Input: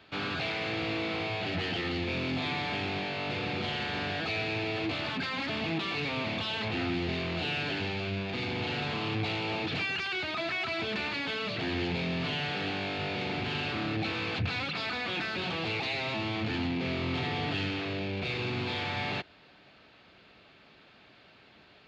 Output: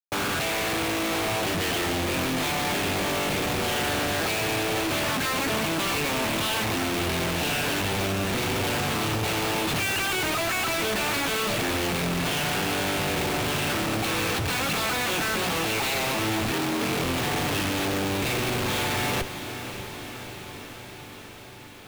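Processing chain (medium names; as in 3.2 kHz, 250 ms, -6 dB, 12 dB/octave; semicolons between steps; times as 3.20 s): Schmitt trigger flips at -41 dBFS; 16.52–17.04 s: frequency shift +55 Hz; echo that smears into a reverb 588 ms, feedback 72%, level -11 dB; trim +6.5 dB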